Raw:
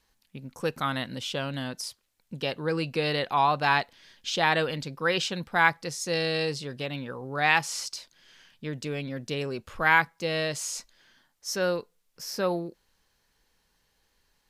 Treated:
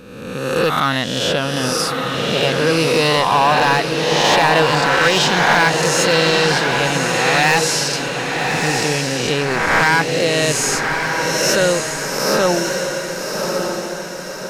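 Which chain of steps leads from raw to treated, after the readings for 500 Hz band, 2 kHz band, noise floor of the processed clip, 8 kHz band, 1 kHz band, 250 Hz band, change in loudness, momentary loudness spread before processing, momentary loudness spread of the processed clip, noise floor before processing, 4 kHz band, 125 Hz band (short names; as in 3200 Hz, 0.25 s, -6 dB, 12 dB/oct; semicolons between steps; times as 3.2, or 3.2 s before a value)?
+14.0 dB, +11.5 dB, -27 dBFS, +17.0 dB, +11.5 dB, +13.0 dB, +12.0 dB, 15 LU, 8 LU, -72 dBFS, +15.0 dB, +12.5 dB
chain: spectral swells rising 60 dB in 1.24 s; in parallel at +0.5 dB: limiter -15.5 dBFS, peak gain reduction 11.5 dB; on the sum: overloaded stage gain 13 dB; diffused feedback echo 1.181 s, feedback 48%, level -4 dB; gain +4 dB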